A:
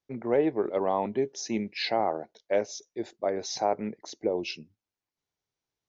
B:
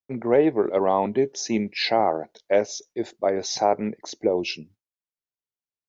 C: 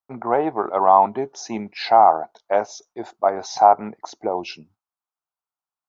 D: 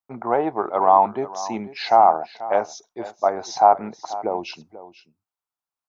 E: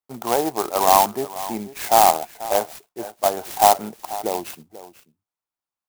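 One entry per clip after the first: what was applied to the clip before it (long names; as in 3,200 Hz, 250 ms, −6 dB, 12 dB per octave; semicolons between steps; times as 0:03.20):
noise gate with hold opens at −53 dBFS; level +6 dB
flat-topped bell 990 Hz +15.5 dB 1.3 octaves; level −4.5 dB
single-tap delay 488 ms −16 dB; level −1 dB
converter with an unsteady clock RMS 0.078 ms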